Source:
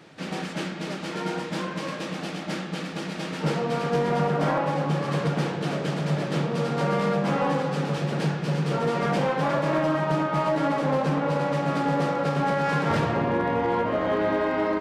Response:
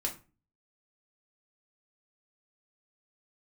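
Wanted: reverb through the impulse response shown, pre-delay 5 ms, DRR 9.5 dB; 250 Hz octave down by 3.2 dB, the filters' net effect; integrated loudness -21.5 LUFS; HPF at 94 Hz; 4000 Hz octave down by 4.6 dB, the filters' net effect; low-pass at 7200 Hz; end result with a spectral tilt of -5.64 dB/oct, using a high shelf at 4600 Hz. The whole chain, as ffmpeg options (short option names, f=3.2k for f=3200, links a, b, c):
-filter_complex "[0:a]highpass=94,lowpass=7.2k,equalizer=f=250:t=o:g=-4.5,equalizer=f=4k:t=o:g=-7.5,highshelf=f=4.6k:g=3,asplit=2[a][b];[1:a]atrim=start_sample=2205,adelay=5[c];[b][c]afir=irnorm=-1:irlink=0,volume=-12dB[d];[a][d]amix=inputs=2:normalize=0,volume=5.5dB"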